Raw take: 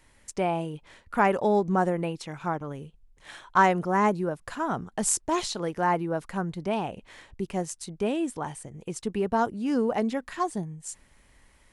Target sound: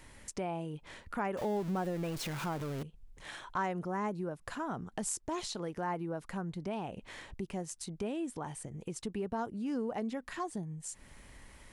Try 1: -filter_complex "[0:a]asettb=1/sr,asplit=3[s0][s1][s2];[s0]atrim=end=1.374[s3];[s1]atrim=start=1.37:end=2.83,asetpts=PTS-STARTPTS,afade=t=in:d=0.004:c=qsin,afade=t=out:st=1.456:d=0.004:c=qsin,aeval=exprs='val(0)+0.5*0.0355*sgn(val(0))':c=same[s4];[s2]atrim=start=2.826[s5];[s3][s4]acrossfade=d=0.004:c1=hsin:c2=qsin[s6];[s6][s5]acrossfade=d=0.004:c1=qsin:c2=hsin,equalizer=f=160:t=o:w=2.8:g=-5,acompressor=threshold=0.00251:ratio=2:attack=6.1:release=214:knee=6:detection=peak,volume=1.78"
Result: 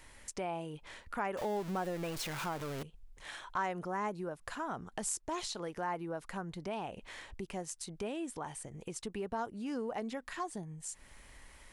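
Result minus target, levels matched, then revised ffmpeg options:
125 Hz band -3.5 dB
-filter_complex "[0:a]asettb=1/sr,asplit=3[s0][s1][s2];[s0]atrim=end=1.374[s3];[s1]atrim=start=1.37:end=2.83,asetpts=PTS-STARTPTS,afade=t=in:d=0.004:c=qsin,afade=t=out:st=1.456:d=0.004:c=qsin,aeval=exprs='val(0)+0.5*0.0355*sgn(val(0))':c=same[s4];[s2]atrim=start=2.826[s5];[s3][s4]acrossfade=d=0.004:c1=hsin:c2=qsin[s6];[s6][s5]acrossfade=d=0.004:c1=qsin:c2=hsin,equalizer=f=160:t=o:w=2.8:g=2.5,acompressor=threshold=0.00251:ratio=2:attack=6.1:release=214:knee=6:detection=peak,volume=1.78"

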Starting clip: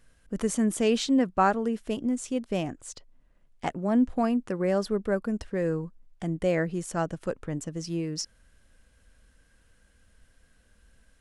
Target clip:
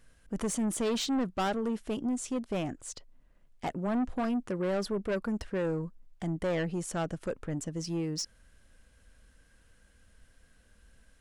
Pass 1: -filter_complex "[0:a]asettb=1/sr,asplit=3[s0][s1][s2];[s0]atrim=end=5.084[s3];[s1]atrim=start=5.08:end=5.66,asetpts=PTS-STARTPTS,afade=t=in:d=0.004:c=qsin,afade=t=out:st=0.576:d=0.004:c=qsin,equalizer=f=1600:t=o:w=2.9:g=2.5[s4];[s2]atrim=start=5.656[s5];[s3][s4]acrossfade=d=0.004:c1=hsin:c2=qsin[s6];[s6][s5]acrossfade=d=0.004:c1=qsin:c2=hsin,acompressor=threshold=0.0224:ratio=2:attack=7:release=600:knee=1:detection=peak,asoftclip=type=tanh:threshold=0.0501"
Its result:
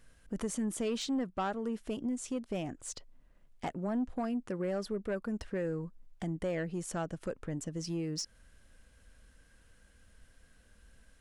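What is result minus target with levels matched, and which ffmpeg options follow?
compression: peak gain reduction +10 dB
-filter_complex "[0:a]asettb=1/sr,asplit=3[s0][s1][s2];[s0]atrim=end=5.084[s3];[s1]atrim=start=5.08:end=5.66,asetpts=PTS-STARTPTS,afade=t=in:d=0.004:c=qsin,afade=t=out:st=0.576:d=0.004:c=qsin,equalizer=f=1600:t=o:w=2.9:g=2.5[s4];[s2]atrim=start=5.656[s5];[s3][s4]acrossfade=d=0.004:c1=hsin:c2=qsin[s6];[s6][s5]acrossfade=d=0.004:c1=qsin:c2=hsin,asoftclip=type=tanh:threshold=0.0501"

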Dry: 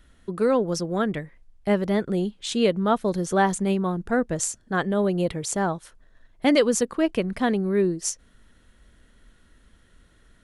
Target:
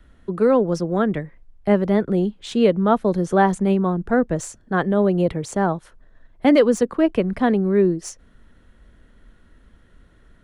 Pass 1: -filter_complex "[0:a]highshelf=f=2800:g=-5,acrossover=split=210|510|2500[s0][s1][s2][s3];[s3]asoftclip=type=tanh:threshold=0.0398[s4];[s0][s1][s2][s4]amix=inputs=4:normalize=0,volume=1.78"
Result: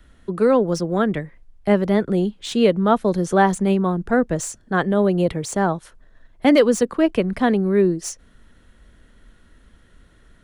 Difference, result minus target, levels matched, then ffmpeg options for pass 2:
4 kHz band +3.5 dB
-filter_complex "[0:a]highshelf=f=2800:g=-12.5,acrossover=split=210|510|2500[s0][s1][s2][s3];[s3]asoftclip=type=tanh:threshold=0.0398[s4];[s0][s1][s2][s4]amix=inputs=4:normalize=0,volume=1.78"

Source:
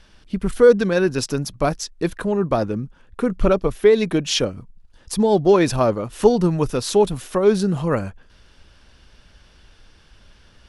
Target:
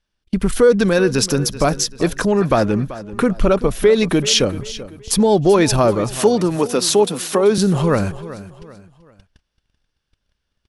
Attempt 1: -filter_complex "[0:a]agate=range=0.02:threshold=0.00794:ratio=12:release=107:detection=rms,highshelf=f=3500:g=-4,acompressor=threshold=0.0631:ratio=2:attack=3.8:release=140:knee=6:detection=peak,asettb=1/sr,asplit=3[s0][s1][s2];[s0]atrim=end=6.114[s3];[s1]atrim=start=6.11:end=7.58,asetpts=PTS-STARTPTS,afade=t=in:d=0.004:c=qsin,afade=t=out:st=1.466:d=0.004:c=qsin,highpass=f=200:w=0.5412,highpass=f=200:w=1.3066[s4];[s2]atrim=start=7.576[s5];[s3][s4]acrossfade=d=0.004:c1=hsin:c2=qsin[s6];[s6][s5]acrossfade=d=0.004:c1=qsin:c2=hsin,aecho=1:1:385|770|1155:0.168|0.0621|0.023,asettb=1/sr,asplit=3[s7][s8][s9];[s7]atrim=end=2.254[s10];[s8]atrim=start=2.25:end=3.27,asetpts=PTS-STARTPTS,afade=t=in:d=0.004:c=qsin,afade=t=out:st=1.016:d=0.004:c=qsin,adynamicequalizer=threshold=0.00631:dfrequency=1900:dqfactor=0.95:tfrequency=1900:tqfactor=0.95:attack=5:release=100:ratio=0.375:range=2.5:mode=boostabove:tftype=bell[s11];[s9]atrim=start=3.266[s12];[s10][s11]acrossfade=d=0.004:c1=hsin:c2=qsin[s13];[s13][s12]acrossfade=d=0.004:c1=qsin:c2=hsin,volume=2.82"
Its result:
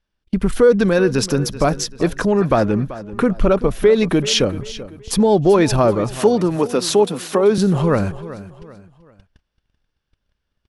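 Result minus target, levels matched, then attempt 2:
8 kHz band -4.5 dB
-filter_complex "[0:a]agate=range=0.02:threshold=0.00794:ratio=12:release=107:detection=rms,highshelf=f=3500:g=4,acompressor=threshold=0.0631:ratio=2:attack=3.8:release=140:knee=6:detection=peak,asettb=1/sr,asplit=3[s0][s1][s2];[s0]atrim=end=6.114[s3];[s1]atrim=start=6.11:end=7.58,asetpts=PTS-STARTPTS,afade=t=in:d=0.004:c=qsin,afade=t=out:st=1.466:d=0.004:c=qsin,highpass=f=200:w=0.5412,highpass=f=200:w=1.3066[s4];[s2]atrim=start=7.576[s5];[s3][s4]acrossfade=d=0.004:c1=hsin:c2=qsin[s6];[s6][s5]acrossfade=d=0.004:c1=qsin:c2=hsin,aecho=1:1:385|770|1155:0.168|0.0621|0.023,asettb=1/sr,asplit=3[s7][s8][s9];[s7]atrim=end=2.254[s10];[s8]atrim=start=2.25:end=3.27,asetpts=PTS-STARTPTS,afade=t=in:d=0.004:c=qsin,afade=t=out:st=1.016:d=0.004:c=qsin,adynamicequalizer=threshold=0.00631:dfrequency=1900:dqfactor=0.95:tfrequency=1900:tqfactor=0.95:attack=5:release=100:ratio=0.375:range=2.5:mode=boostabove:tftype=bell[s11];[s9]atrim=start=3.266[s12];[s10][s11]acrossfade=d=0.004:c1=hsin:c2=qsin[s13];[s13][s12]acrossfade=d=0.004:c1=qsin:c2=hsin,volume=2.82"

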